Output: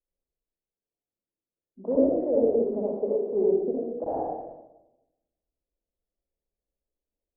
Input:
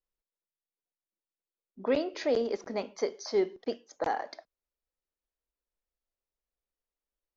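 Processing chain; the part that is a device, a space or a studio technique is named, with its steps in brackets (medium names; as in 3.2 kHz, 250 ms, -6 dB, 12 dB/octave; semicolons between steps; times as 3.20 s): next room (low-pass 640 Hz 24 dB/octave; reverberation RT60 0.95 s, pre-delay 59 ms, DRR -6.5 dB)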